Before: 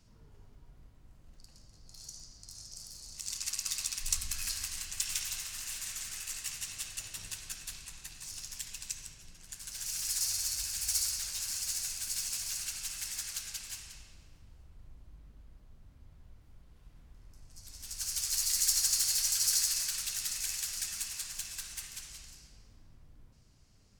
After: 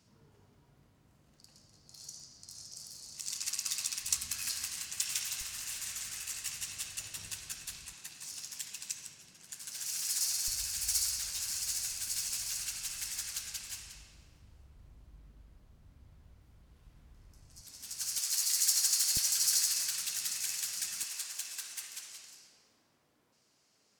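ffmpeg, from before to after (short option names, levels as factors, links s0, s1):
-af "asetnsamples=n=441:p=0,asendcmd='5.41 highpass f 58;7.93 highpass f 170;10.48 highpass f 41;17.61 highpass f 140;18.18 highpass f 400;19.17 highpass f 150;21.03 highpass f 360',highpass=120"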